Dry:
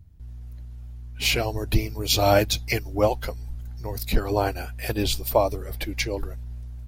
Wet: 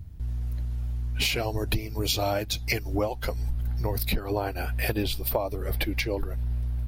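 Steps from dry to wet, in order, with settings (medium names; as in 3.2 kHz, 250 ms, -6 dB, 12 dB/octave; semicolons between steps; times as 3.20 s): compression 16:1, threshold -32 dBFS, peak gain reduction 19.5 dB; peaking EQ 6.8 kHz -2 dB 0.71 oct, from 3.51 s -10 dB; trim +9 dB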